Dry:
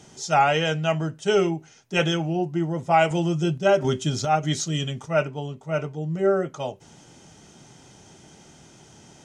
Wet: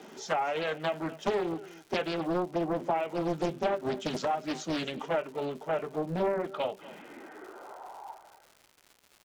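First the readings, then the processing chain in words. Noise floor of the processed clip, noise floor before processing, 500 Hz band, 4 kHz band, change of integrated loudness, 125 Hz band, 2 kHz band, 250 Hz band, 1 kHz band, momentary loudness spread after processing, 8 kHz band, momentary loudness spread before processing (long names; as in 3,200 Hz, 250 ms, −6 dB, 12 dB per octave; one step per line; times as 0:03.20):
−64 dBFS, −51 dBFS, −7.0 dB, −10.0 dB, −8.0 dB, −15.0 dB, −9.5 dB, −7.5 dB, −8.5 dB, 16 LU, −13.5 dB, 9 LU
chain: spectral magnitudes quantised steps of 15 dB
three-way crossover with the lows and the highs turned down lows −21 dB, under 310 Hz, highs −14 dB, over 4,100 Hz
downsampling to 32,000 Hz
low-pass filter sweep 6,700 Hz → 510 Hz, 0:05.99–0:08.57
downward compressor 8 to 1, threshold −33 dBFS, peak gain reduction 18.5 dB
high-pass filter sweep 190 Hz → 2,900 Hz, 0:07.01–0:08.86
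parametric band 6,700 Hz −11.5 dB 1.9 octaves
surface crackle 240 per second −49 dBFS
mains-hum notches 50/100/150 Hz
on a send: single-tap delay 248 ms −18.5 dB
on the sum: highs frequency-modulated by the lows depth 0.91 ms
level +5.5 dB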